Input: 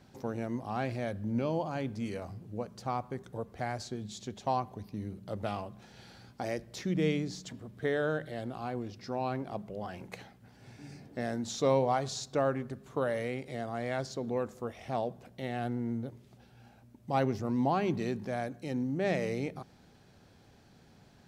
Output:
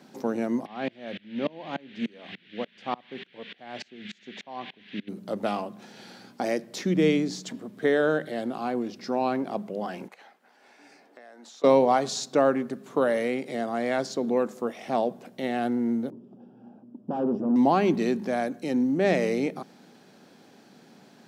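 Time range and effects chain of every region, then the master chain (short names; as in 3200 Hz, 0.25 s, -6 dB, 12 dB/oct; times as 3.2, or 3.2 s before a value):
0.65–5.07 LPF 4900 Hz + band noise 1600–3600 Hz -47 dBFS + dB-ramp tremolo swelling 3.4 Hz, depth 29 dB
10.08–11.64 HPF 750 Hz + high shelf 2700 Hz -10.5 dB + compressor, threshold -53 dBFS
16.1–17.56 tube stage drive 37 dB, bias 0.75 + running mean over 21 samples + bell 240 Hz +9.5 dB 2.5 oct
whole clip: HPF 190 Hz 24 dB/oct; bell 240 Hz +3 dB 1.6 oct; gain +7 dB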